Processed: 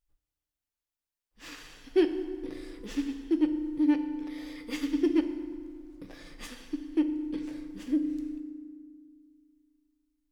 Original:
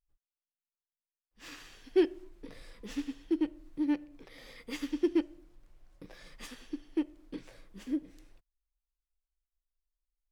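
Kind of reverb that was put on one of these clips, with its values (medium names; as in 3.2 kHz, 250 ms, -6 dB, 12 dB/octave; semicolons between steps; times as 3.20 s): FDN reverb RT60 1.9 s, low-frequency decay 1.4×, high-frequency decay 0.65×, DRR 7.5 dB; trim +2.5 dB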